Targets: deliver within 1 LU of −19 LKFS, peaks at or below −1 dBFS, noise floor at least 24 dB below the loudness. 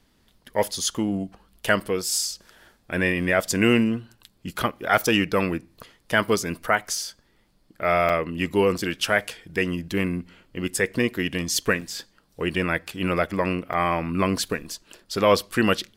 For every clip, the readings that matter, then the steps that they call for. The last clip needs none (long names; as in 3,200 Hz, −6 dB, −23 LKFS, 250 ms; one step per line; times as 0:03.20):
number of dropouts 5; longest dropout 5.2 ms; integrated loudness −24.0 LKFS; sample peak −4.0 dBFS; target loudness −19.0 LKFS
→ repair the gap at 0:01.80/0:08.09/0:08.78/0:11.81/0:13.73, 5.2 ms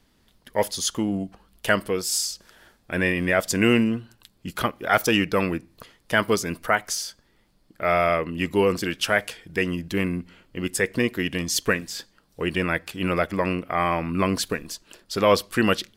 number of dropouts 0; integrated loudness −24.0 LKFS; sample peak −4.0 dBFS; target loudness −19.0 LKFS
→ level +5 dB
brickwall limiter −1 dBFS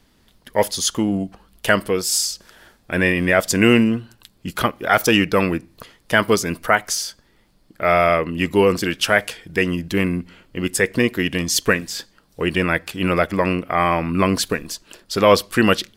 integrated loudness −19.0 LKFS; sample peak −1.0 dBFS; background noise floor −58 dBFS